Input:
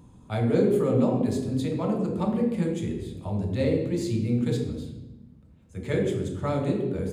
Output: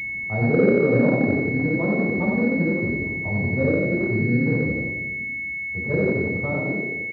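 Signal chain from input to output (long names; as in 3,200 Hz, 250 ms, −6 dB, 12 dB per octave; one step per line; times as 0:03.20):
fade-out on the ending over 0.86 s
echo with shifted repeats 89 ms, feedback 45%, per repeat +34 Hz, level −4 dB
switching amplifier with a slow clock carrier 2,200 Hz
level +2.5 dB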